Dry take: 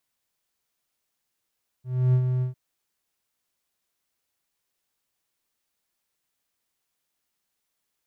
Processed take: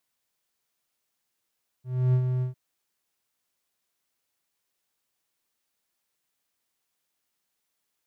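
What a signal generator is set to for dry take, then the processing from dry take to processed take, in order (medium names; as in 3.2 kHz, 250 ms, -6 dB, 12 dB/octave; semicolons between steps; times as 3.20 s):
ADSR triangle 127 Hz, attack 296 ms, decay 76 ms, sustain -6 dB, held 0.58 s, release 122 ms -13.5 dBFS
bass shelf 85 Hz -6 dB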